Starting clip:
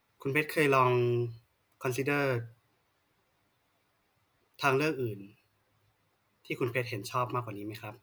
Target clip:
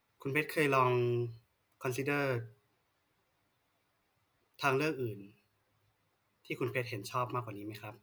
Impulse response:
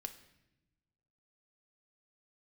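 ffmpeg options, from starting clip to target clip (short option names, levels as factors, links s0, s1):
-af "bandreject=f=205.6:t=h:w=4,bandreject=f=411.2:t=h:w=4,volume=0.668"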